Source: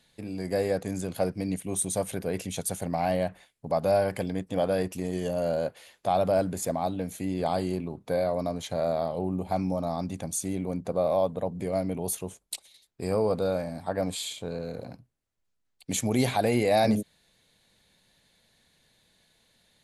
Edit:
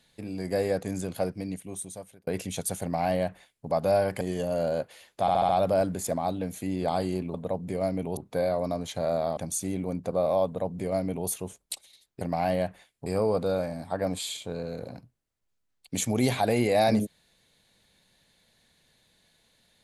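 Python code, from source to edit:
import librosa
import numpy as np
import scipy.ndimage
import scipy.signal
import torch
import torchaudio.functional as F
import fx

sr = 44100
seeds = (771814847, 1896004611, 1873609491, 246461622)

y = fx.edit(x, sr, fx.fade_out_span(start_s=1.02, length_s=1.25),
    fx.duplicate(start_s=2.82, length_s=0.85, to_s=13.02),
    fx.cut(start_s=4.21, length_s=0.86),
    fx.stutter(start_s=6.07, slice_s=0.07, count=5),
    fx.cut(start_s=9.12, length_s=1.06),
    fx.duplicate(start_s=11.26, length_s=0.83, to_s=7.92), tone=tone)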